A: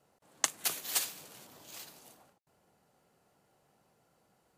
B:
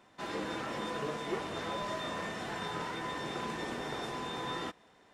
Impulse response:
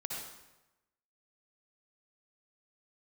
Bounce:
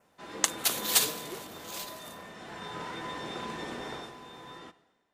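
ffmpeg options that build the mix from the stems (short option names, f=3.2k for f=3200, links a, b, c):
-filter_complex "[0:a]volume=0.5dB[a];[1:a]volume=0.5dB,afade=t=out:st=0.89:d=0.56:silence=0.375837,afade=t=in:st=2.27:d=0.66:silence=0.375837,afade=t=out:st=3.91:d=0.23:silence=0.354813,asplit=2[b][c];[c]volume=-15.5dB[d];[2:a]atrim=start_sample=2205[e];[d][e]afir=irnorm=-1:irlink=0[f];[a][b][f]amix=inputs=3:normalize=0,bandreject=f=50:t=h:w=6,bandreject=f=100:t=h:w=6,bandreject=f=150:t=h:w=6,adynamicequalizer=threshold=0.00158:dfrequency=3700:dqfactor=4.1:tfrequency=3700:tqfactor=4.1:attack=5:release=100:ratio=0.375:range=2.5:mode=boostabove:tftype=bell,dynaudnorm=f=120:g=5:m=6.5dB"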